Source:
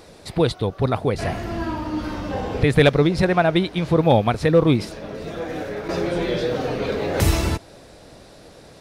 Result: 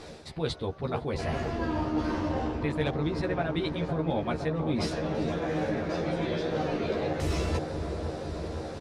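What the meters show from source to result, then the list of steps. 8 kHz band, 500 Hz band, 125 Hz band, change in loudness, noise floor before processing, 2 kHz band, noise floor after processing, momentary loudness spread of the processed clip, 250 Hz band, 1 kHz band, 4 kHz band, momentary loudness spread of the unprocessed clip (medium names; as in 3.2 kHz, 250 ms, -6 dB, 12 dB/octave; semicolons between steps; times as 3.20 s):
-11.0 dB, -9.5 dB, -9.5 dB, -9.5 dB, -46 dBFS, -10.0 dB, -43 dBFS, 5 LU, -8.0 dB, -8.5 dB, -9.5 dB, 13 LU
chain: low-pass 7.7 kHz 12 dB/octave; reverse; compression 6:1, threshold -30 dBFS, peak gain reduction 18.5 dB; reverse; doubling 13 ms -3 dB; feedback echo behind a low-pass 512 ms, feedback 77%, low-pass 1.2 kHz, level -6 dB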